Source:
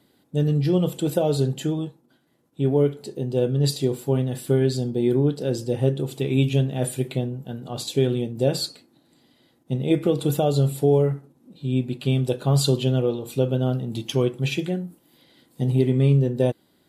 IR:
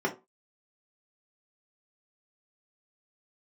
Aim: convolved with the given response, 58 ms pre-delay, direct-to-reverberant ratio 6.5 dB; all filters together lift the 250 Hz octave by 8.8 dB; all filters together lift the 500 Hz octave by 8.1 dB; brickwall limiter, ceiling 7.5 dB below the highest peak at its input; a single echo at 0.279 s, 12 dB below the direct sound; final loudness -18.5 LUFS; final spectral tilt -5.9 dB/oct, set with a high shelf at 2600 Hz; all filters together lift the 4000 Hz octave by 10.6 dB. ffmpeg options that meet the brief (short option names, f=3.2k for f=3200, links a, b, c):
-filter_complex "[0:a]equalizer=f=250:t=o:g=9,equalizer=f=500:t=o:g=6.5,highshelf=f=2.6k:g=9,equalizer=f=4k:t=o:g=5,alimiter=limit=-7.5dB:level=0:latency=1,aecho=1:1:279:0.251,asplit=2[a][b];[1:a]atrim=start_sample=2205,adelay=58[c];[b][c]afir=irnorm=-1:irlink=0,volume=-16.5dB[d];[a][d]amix=inputs=2:normalize=0,volume=-2.5dB"